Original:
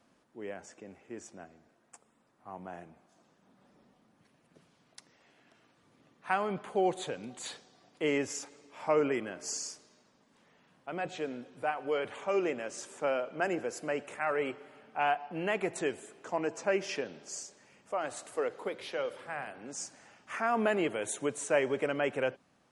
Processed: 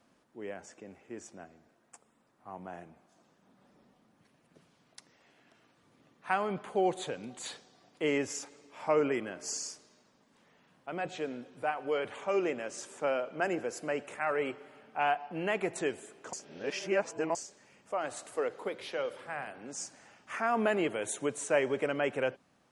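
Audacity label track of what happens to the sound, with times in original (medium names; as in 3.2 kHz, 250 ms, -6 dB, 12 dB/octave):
16.330000	17.350000	reverse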